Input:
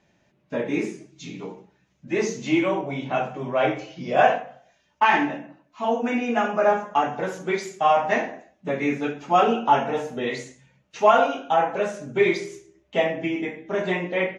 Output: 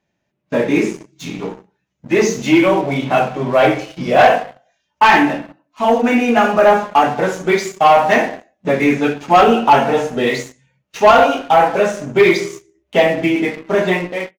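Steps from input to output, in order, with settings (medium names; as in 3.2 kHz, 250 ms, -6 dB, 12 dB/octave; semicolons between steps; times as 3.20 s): fade out at the end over 0.58 s; waveshaping leveller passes 2; spectral noise reduction 7 dB; trim +3 dB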